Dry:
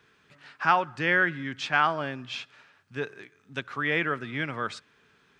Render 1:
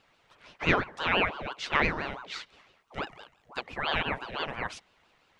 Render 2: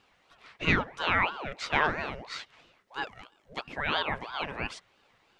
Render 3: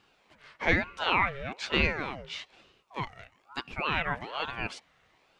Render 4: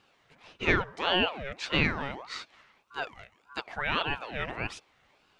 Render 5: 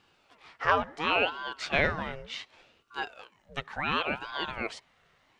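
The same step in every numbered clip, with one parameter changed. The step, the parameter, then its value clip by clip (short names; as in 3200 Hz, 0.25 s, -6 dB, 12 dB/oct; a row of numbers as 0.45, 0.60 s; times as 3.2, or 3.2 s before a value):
ring modulator with a swept carrier, at: 5.9, 3, 1.1, 1.7, 0.69 Hz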